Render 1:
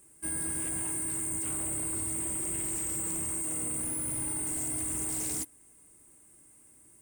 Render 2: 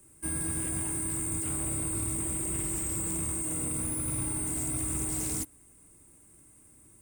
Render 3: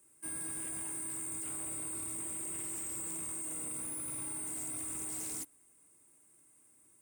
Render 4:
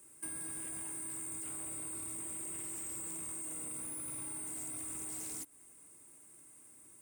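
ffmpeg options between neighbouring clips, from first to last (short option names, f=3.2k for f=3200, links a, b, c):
-filter_complex "[0:a]lowshelf=f=250:g=9.5,acrossover=split=180|870|7000[a][b][c][d];[a]acrusher=samples=36:mix=1:aa=0.000001[e];[e][b][c][d]amix=inputs=4:normalize=0"
-af "highpass=f=470:p=1,volume=-6.5dB"
-af "acompressor=threshold=-46dB:ratio=12,volume=6.5dB"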